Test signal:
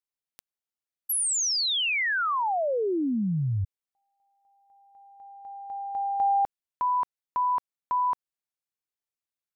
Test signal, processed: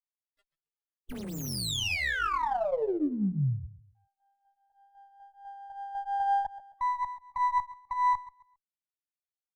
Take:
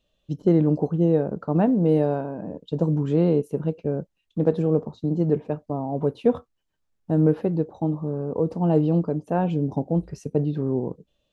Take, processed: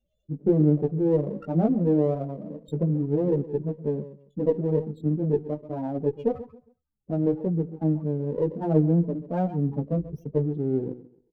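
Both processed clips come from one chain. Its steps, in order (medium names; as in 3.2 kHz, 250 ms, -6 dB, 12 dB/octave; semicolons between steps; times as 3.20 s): on a send: feedback delay 135 ms, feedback 26%, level -15 dB; on the sum: chorus voices 2, 0.3 Hz, delay 17 ms, depth 3.6 ms; loudest bins only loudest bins 16; sliding maximum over 5 samples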